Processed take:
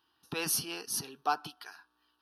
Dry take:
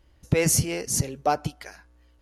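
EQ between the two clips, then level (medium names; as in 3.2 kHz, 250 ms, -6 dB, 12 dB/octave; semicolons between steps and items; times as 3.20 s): high-pass 480 Hz 12 dB/octave; static phaser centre 2.1 kHz, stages 6; 0.0 dB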